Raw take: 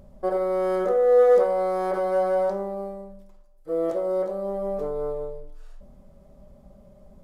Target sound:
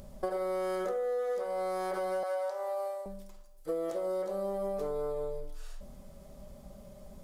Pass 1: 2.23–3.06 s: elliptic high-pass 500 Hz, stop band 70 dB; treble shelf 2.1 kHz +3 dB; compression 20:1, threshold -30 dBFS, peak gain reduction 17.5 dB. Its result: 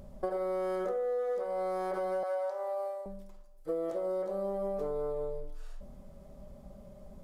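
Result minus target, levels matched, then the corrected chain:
4 kHz band -6.5 dB
2.23–3.06 s: elliptic high-pass 500 Hz, stop band 70 dB; treble shelf 2.1 kHz +12.5 dB; compression 20:1, threshold -30 dBFS, peak gain reduction 18.5 dB

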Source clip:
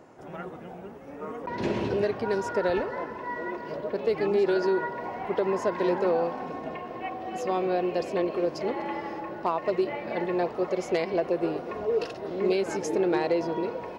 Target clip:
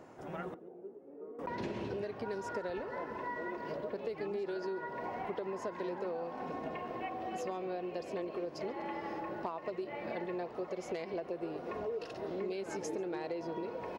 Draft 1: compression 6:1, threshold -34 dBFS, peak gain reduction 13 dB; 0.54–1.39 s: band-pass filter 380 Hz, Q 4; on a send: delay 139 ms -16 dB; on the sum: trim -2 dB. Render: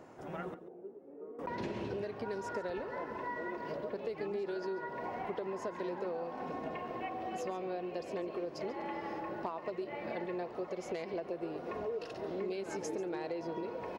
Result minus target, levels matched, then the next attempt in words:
echo-to-direct +8.5 dB
compression 6:1, threshold -34 dBFS, peak gain reduction 13 dB; 0.54–1.39 s: band-pass filter 380 Hz, Q 4; on a send: delay 139 ms -24.5 dB; on the sum: trim -2 dB

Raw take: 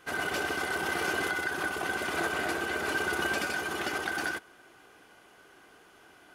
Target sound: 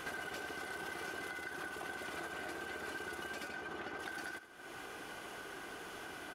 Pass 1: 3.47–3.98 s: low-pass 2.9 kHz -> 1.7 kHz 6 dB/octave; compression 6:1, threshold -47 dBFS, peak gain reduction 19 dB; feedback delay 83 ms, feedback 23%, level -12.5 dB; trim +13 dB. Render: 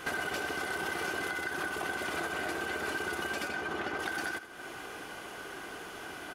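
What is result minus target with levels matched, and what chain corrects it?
compression: peak gain reduction -8.5 dB
3.47–3.98 s: low-pass 2.9 kHz -> 1.7 kHz 6 dB/octave; compression 6:1, threshold -57.5 dBFS, peak gain reduction 28 dB; feedback delay 83 ms, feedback 23%, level -12.5 dB; trim +13 dB

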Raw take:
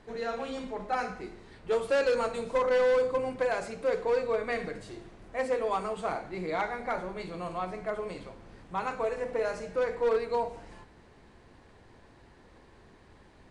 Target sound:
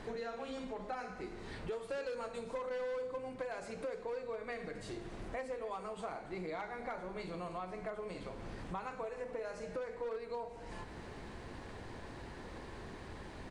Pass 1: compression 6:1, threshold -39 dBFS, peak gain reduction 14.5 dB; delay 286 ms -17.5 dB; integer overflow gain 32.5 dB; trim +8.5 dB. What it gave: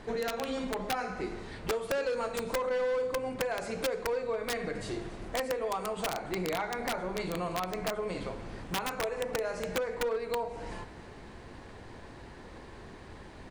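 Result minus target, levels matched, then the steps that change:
compression: peak gain reduction -8.5 dB
change: compression 6:1, threshold -49.5 dBFS, peak gain reduction 23.5 dB

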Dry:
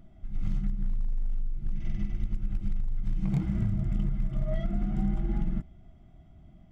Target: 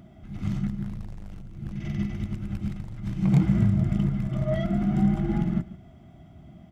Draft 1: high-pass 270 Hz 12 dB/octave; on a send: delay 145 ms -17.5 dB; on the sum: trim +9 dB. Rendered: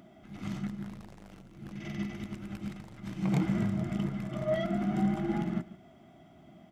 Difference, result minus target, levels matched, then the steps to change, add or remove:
125 Hz band -3.5 dB
change: high-pass 95 Hz 12 dB/octave

